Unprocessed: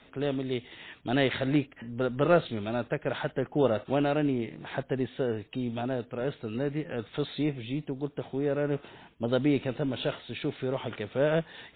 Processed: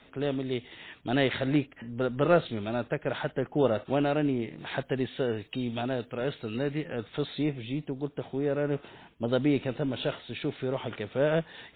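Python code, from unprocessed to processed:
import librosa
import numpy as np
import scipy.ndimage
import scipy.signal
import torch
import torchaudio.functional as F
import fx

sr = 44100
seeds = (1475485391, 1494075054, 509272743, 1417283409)

y = fx.high_shelf(x, sr, hz=2500.0, db=9.0, at=(4.58, 6.88))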